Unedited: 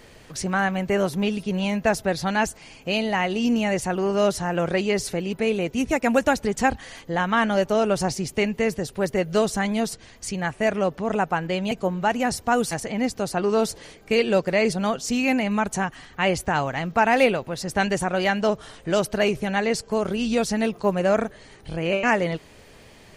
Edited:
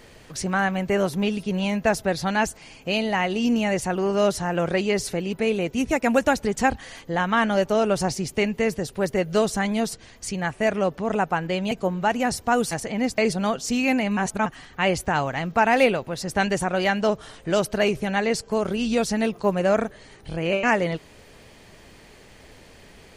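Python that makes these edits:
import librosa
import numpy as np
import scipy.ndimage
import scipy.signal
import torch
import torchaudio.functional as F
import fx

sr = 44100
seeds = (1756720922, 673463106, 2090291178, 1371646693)

y = fx.edit(x, sr, fx.cut(start_s=13.18, length_s=1.4),
    fx.reverse_span(start_s=15.57, length_s=0.29), tone=tone)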